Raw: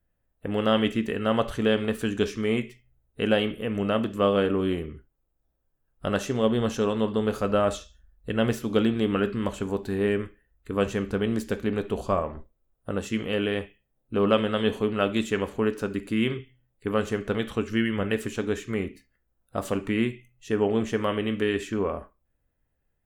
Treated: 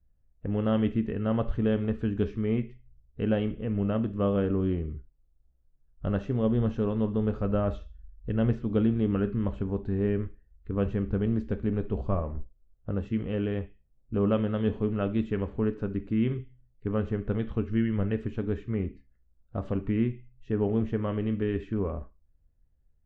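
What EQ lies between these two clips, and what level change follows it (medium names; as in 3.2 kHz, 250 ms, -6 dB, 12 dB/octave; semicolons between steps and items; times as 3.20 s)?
distance through air 150 m; RIAA curve playback; -8.0 dB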